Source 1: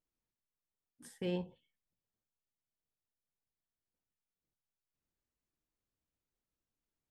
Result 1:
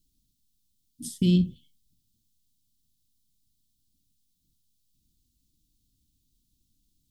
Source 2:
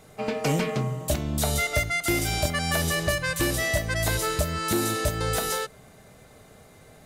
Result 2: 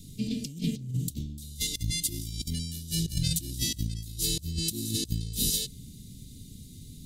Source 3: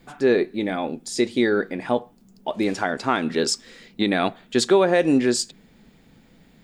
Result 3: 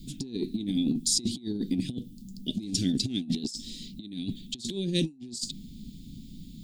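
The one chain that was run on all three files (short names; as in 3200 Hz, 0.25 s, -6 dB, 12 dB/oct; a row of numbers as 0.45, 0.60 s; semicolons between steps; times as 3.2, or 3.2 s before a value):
Chebyshev band-stop 270–3600 Hz, order 3; low shelf 110 Hz +5.5 dB; negative-ratio compressor -32 dBFS, ratio -0.5; normalise peaks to -12 dBFS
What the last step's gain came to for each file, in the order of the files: +18.5, +1.0, +2.5 dB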